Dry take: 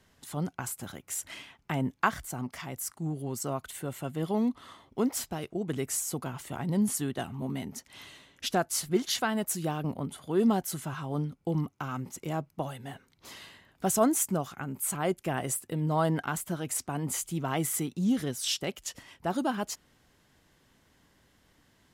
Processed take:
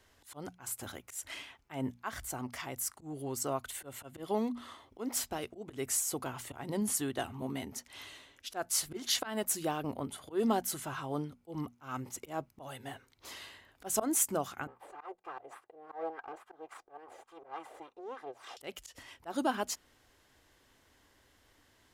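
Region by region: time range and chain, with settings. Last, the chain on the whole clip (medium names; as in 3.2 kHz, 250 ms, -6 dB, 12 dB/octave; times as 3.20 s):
14.67–18.57 s: comb filter that takes the minimum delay 2.5 ms + wah-wah 3.5 Hz 550–1200 Hz, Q 2.8
whole clip: slow attack 149 ms; peaking EQ 170 Hz -12.5 dB 0.74 oct; hum notches 60/120/180/240 Hz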